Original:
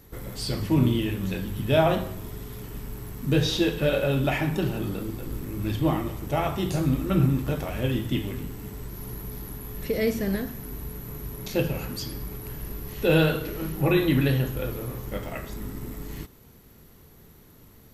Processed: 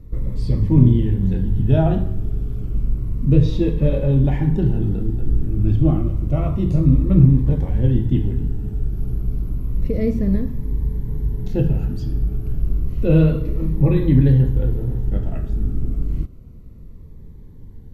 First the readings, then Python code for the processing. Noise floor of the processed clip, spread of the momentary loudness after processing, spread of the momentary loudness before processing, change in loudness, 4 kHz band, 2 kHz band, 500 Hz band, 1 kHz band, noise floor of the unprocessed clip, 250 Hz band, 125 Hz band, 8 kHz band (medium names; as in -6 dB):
-38 dBFS, 12 LU, 15 LU, +7.0 dB, under -10 dB, no reading, +0.5 dB, -4.5 dB, -52 dBFS, +6.5 dB, +11.0 dB, under -15 dB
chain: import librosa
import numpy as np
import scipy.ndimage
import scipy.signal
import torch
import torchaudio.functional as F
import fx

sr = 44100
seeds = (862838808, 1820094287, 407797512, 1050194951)

y = fx.tilt_eq(x, sr, slope=-4.5)
y = fx.notch_cascade(y, sr, direction='falling', hz=0.3)
y = y * librosa.db_to_amplitude(-2.5)